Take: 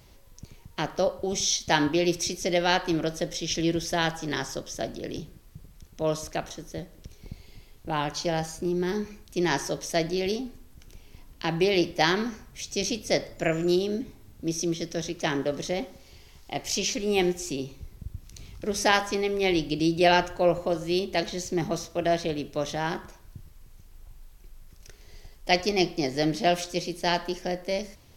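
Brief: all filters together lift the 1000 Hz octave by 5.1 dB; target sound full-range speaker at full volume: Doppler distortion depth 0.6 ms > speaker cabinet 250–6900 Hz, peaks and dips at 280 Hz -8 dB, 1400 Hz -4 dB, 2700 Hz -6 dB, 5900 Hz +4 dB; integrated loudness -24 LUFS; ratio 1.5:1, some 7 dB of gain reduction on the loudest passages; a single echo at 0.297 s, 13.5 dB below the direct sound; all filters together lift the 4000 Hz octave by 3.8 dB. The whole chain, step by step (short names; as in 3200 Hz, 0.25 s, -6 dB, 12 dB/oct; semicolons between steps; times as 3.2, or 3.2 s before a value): bell 1000 Hz +7.5 dB; bell 4000 Hz +5.5 dB; compressor 1.5:1, threshold -31 dBFS; echo 0.297 s -13.5 dB; Doppler distortion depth 0.6 ms; speaker cabinet 250–6900 Hz, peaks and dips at 280 Hz -8 dB, 1400 Hz -4 dB, 2700 Hz -6 dB, 5900 Hz +4 dB; gain +6.5 dB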